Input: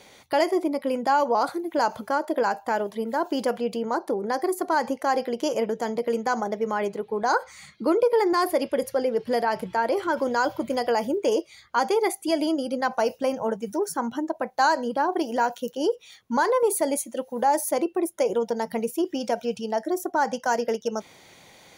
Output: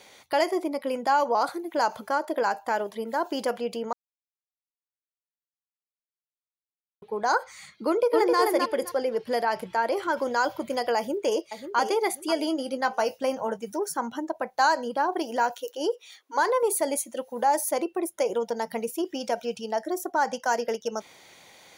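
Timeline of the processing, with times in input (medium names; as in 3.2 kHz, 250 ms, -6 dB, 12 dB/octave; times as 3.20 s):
3.93–7.02 s: mute
7.87–8.39 s: echo throw 260 ms, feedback 20%, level -2.5 dB
10.97–11.78 s: echo throw 540 ms, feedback 30%, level -9.5 dB
12.36–13.59 s: doubling 19 ms -12 dB
15.51–16.39 s: brick-wall FIR high-pass 270 Hz
whole clip: bass shelf 320 Hz -8.5 dB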